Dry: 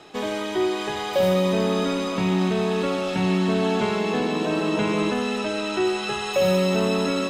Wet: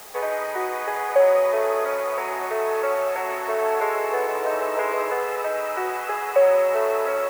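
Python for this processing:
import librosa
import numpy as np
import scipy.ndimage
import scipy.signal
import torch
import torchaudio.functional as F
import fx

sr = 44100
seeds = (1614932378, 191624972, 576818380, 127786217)

p1 = scipy.signal.sosfilt(scipy.signal.ellip(3, 1.0, 40, [470.0, 2100.0], 'bandpass', fs=sr, output='sos'), x)
p2 = fx.quant_dither(p1, sr, seeds[0], bits=6, dither='triangular')
p3 = p1 + (p2 * 10.0 ** (-10.0 / 20.0))
y = p3 * 10.0 ** (2.5 / 20.0)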